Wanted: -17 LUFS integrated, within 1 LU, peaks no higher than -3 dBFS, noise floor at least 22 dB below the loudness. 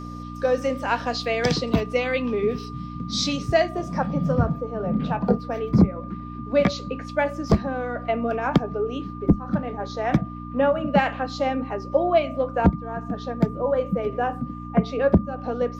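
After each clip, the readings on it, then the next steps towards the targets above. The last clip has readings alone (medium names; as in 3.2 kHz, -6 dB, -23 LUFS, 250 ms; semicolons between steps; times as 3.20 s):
hum 60 Hz; highest harmonic 300 Hz; hum level -33 dBFS; steady tone 1.2 kHz; tone level -39 dBFS; loudness -24.0 LUFS; peak level -6.5 dBFS; loudness target -17.0 LUFS
-> de-hum 60 Hz, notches 5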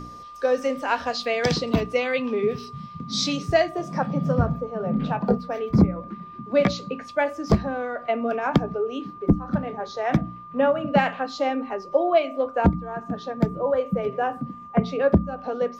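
hum not found; steady tone 1.2 kHz; tone level -39 dBFS
-> band-stop 1.2 kHz, Q 30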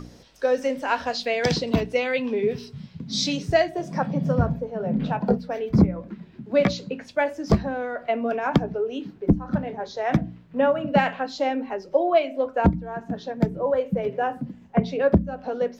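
steady tone not found; loudness -24.5 LUFS; peak level -7.0 dBFS; loudness target -17.0 LUFS
-> trim +7.5 dB; peak limiter -3 dBFS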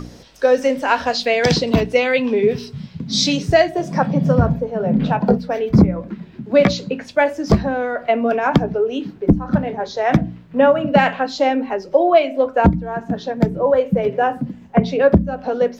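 loudness -17.5 LUFS; peak level -3.0 dBFS; noise floor -41 dBFS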